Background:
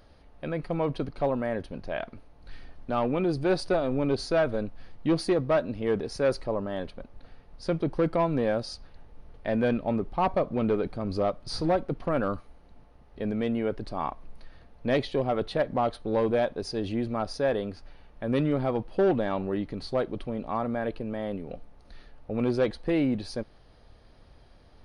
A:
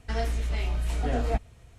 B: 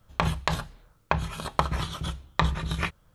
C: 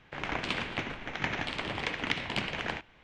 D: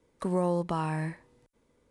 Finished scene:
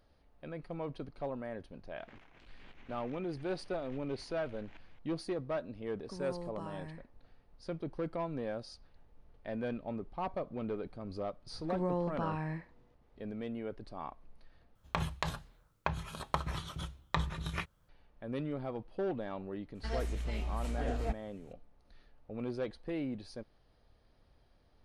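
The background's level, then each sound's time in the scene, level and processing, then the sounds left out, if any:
background -12 dB
1.96 add C -17 dB + negative-ratio compressor -45 dBFS
5.87 add D -15 dB + low-pass opened by the level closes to 870 Hz, open at -24.5 dBFS
11.48 add D -6 dB + Bessel low-pass 3800 Hz, order 4
14.75 replace with B -9 dB
19.75 add A -8.5 dB

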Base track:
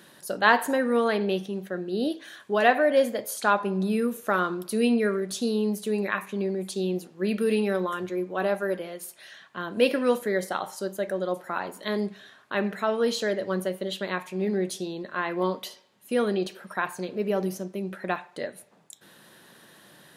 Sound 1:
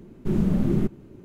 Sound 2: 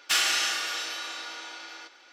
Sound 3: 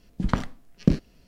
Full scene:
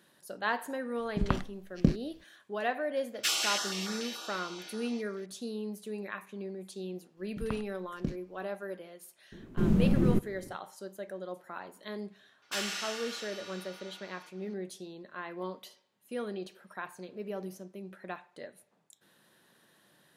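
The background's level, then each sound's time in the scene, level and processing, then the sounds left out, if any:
base track -12 dB
0.97 add 3 -5 dB
3.14 add 2 -4 dB + stepped notch 6.9 Hz 930–2800 Hz
7.17 add 3 -14.5 dB
9.32 add 1 -3 dB
12.42 add 2 -11.5 dB

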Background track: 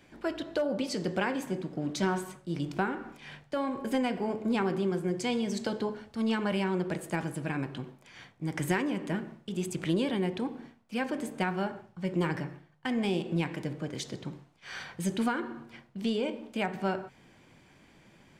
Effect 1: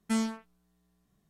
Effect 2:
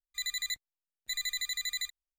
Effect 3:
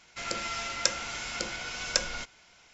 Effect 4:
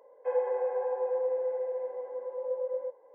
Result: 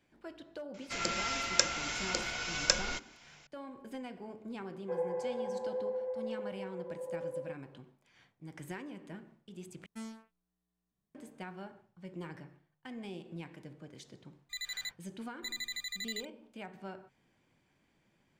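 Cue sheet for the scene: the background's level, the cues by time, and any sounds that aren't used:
background track -14.5 dB
0.74 add 3 -0.5 dB
4.63 add 4 -6.5 dB
9.86 replace with 1 -15.5 dB
14.35 add 2 -3.5 dB + high shelf 7100 Hz -8 dB

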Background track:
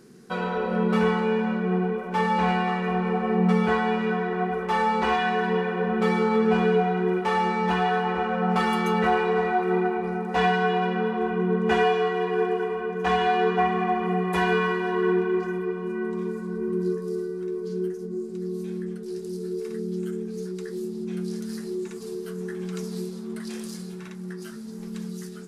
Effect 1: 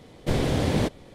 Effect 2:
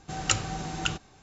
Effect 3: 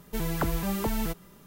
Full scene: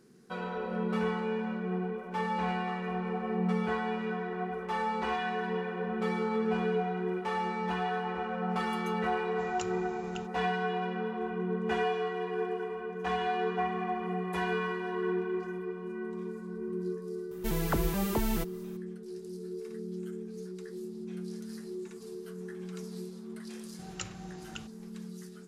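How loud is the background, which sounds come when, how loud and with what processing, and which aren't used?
background track -9 dB
9.3 add 2 -17.5 dB
17.31 add 3 -1.5 dB
23.7 add 2 -15 dB
not used: 1

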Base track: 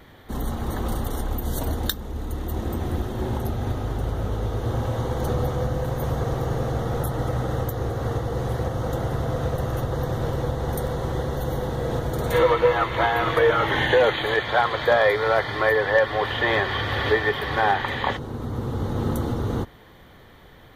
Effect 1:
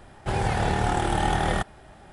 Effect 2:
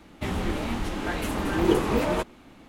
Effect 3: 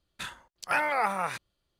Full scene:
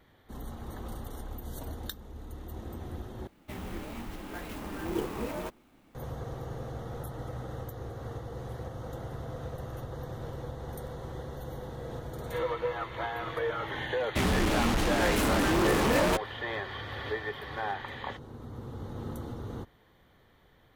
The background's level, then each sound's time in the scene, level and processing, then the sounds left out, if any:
base track -13.5 dB
3.27 replace with 2 -11 dB + clock jitter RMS 0.03 ms
13.94 add 2 -10 dB + fuzz box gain 33 dB, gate -38 dBFS
not used: 1, 3

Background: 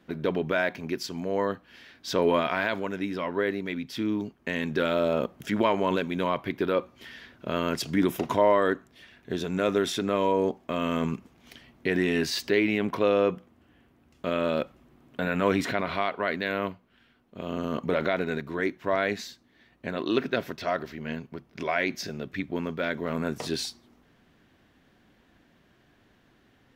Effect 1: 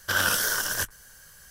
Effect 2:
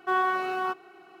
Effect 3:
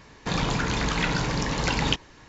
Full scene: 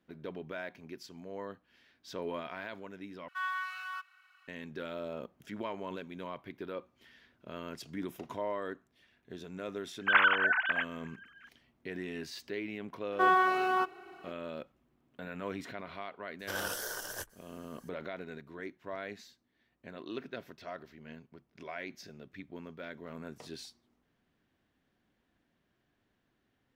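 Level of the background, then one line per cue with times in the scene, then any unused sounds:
background -15 dB
3.28 replace with 2 -5.5 dB + steep high-pass 1200 Hz
9.99 add 1 -1.5 dB + sine-wave speech
13.12 add 2
16.39 add 1 -14 dB + band shelf 520 Hz +8 dB
not used: 3

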